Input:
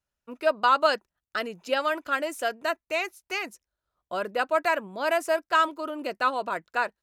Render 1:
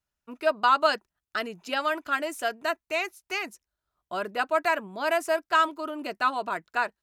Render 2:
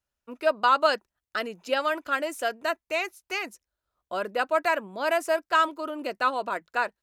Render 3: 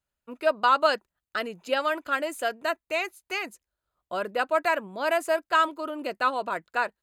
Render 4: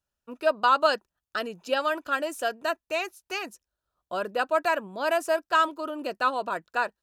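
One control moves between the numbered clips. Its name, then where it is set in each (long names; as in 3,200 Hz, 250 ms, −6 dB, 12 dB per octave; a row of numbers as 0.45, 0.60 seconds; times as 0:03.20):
notch filter, centre frequency: 520, 160, 5,600, 2,100 Hertz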